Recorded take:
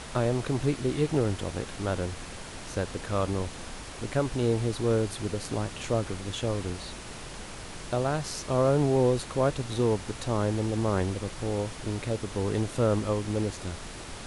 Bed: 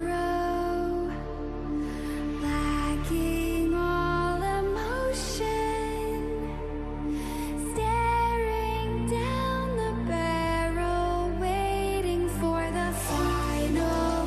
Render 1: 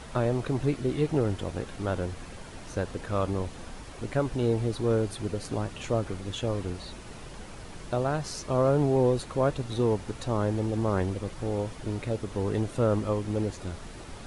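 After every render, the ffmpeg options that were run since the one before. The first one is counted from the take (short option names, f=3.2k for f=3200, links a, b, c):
-af "afftdn=nr=7:nf=-42"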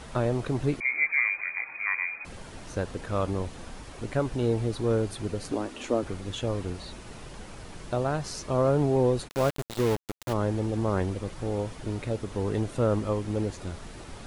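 -filter_complex "[0:a]asettb=1/sr,asplit=3[a][b][c];[a]atrim=end=0.804[d];[b]atrim=start=0.8:end=2.25,asetpts=PTS-STARTPTS,afade=t=in:d=0.004:c=qsin,afade=t=out:st=1.446:d=0.004:c=qsin,lowpass=f=2.1k:t=q:w=0.5098,lowpass=f=2.1k:t=q:w=0.6013,lowpass=f=2.1k:t=q:w=0.9,lowpass=f=2.1k:t=q:w=2.563,afreqshift=-2500[e];[c]atrim=start=2.246[f];[d][e]acrossfade=d=0.004:c1=hsin:c2=qsin[g];[g][f]acrossfade=d=0.004:c1=qsin:c2=hsin,asettb=1/sr,asplit=3[h][i][j];[h]atrim=end=5.524[k];[i]atrim=start=5.52:end=6.03,asetpts=PTS-STARTPTS,afade=t=in:d=0.004:c=qsin,afade=t=out:st=0.506:d=0.004:c=qsin,lowshelf=f=200:t=q:w=3:g=-9[l];[j]atrim=start=6.026[m];[k][l]acrossfade=d=0.004:c1=hsin:c2=qsin[n];[n][m]acrossfade=d=0.004:c1=qsin:c2=hsin,asplit=3[o][p][q];[o]afade=t=out:st=9.27:d=0.02[r];[p]aeval=exprs='val(0)*gte(abs(val(0)),0.0398)':c=same,afade=t=in:st=9.27:d=0.02,afade=t=out:st=10.32:d=0.02[s];[q]afade=t=in:st=10.32:d=0.02[t];[r][s][t]amix=inputs=3:normalize=0"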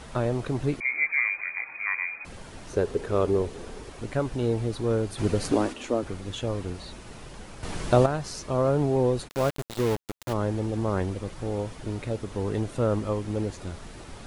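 -filter_complex "[0:a]asettb=1/sr,asplit=3[a][b][c];[a]atrim=end=2.734[d];[b]atrim=start=2.73:end=3.9,asetpts=PTS-STARTPTS,afade=t=in:d=0.004:c=qsin,afade=t=out:st=1.166:d=0.004:c=qsin,equalizer=f=410:t=o:w=0.45:g=14.5[e];[c]atrim=start=3.896[f];[d][e]acrossfade=d=0.004:c1=hsin:c2=qsin[g];[g][f]acrossfade=d=0.004:c1=qsin:c2=hsin,asplit=3[h][i][j];[h]afade=t=out:st=5.17:d=0.02[k];[i]acontrast=83,afade=t=in:st=5.17:d=0.02,afade=t=out:st=5.72:d=0.02[l];[j]afade=t=in:st=5.72:d=0.02[m];[k][l][m]amix=inputs=3:normalize=0,asplit=3[n][o][p];[n]atrim=end=7.632[q];[o]atrim=start=7.628:end=8.062,asetpts=PTS-STARTPTS,volume=9.5dB[r];[p]atrim=start=8.058[s];[q][r]acrossfade=d=0.004:c1=hsin:c2=hsin[t];[t][s]acrossfade=d=0.004:c1=hsin:c2=hsin"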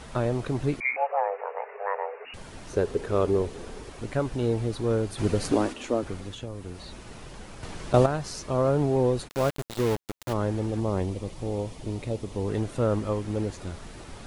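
-filter_complex "[0:a]asettb=1/sr,asplit=3[a][b][c];[a]atrim=end=0.964[d];[b]atrim=start=0.96:end=2.34,asetpts=PTS-STARTPTS,afade=t=in:d=0.004:c=qsin,afade=t=out:st=1.376:d=0.004:c=qsin,lowpass=f=2.5k:t=q:w=0.5098,lowpass=f=2.5k:t=q:w=0.6013,lowpass=f=2.5k:t=q:w=0.9,lowpass=f=2.5k:t=q:w=2.563,afreqshift=-2900[e];[c]atrim=start=2.336[f];[d][e]acrossfade=d=0.004:c1=hsin:c2=qsin[g];[g][f]acrossfade=d=0.004:c1=qsin:c2=hsin,asettb=1/sr,asplit=3[h][i][j];[h]atrim=end=6.204[k];[i]atrim=start=6.2:end=7.94,asetpts=PTS-STARTPTS,afade=t=in:d=0.004:c=qsin,afade=t=out:st=1.736:d=0.004:c=qsin,acrossover=split=340|7800[l][m][n];[l]acompressor=threshold=-36dB:ratio=4[o];[m]acompressor=threshold=-41dB:ratio=4[p];[n]acompressor=threshold=-59dB:ratio=4[q];[o][p][q]amix=inputs=3:normalize=0[r];[j]atrim=start=7.936[s];[k][r]acrossfade=d=0.004:c1=hsin:c2=qsin[t];[t][s]acrossfade=d=0.004:c1=qsin:c2=hsin,asettb=1/sr,asplit=3[u][v][w];[u]atrim=end=10.804[x];[v]atrim=start=10.8:end=12.49,asetpts=PTS-STARTPTS,afade=t=in:d=0.004:c=qsin,afade=t=out:st=1.686:d=0.004:c=qsin,equalizer=f=1.5k:t=o:w=0.67:g=-10[y];[w]atrim=start=12.486[z];[x][y]acrossfade=d=0.004:c1=hsin:c2=qsin[aa];[aa][z]acrossfade=d=0.004:c1=qsin:c2=hsin"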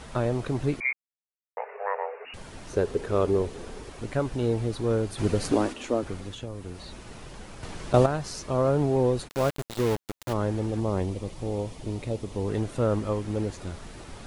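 -filter_complex "[0:a]asplit=3[a][b][c];[a]atrim=end=0.93,asetpts=PTS-STARTPTS,afade=t=out:st=0.926:d=0.004:c=hsin[d];[b]atrim=start=0.93:end=1.57,asetpts=PTS-STARTPTS,volume=0[e];[c]atrim=start=1.57,asetpts=PTS-STARTPTS,afade=t=in:d=0.004:c=hsin[f];[d][e][f]concat=n=3:v=0:a=1"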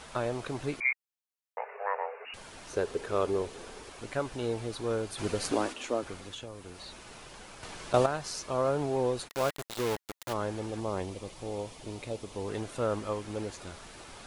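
-af "lowshelf=f=390:g=-12,bandreject=f=1.9k:w=28"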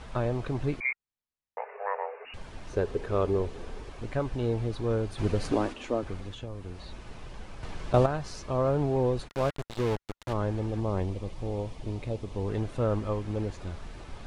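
-af "aemphasis=mode=reproduction:type=bsi,bandreject=f=1.4k:w=24"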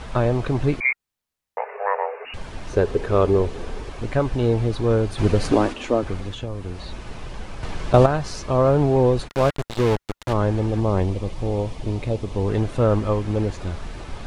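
-af "volume=9dB,alimiter=limit=-2dB:level=0:latency=1"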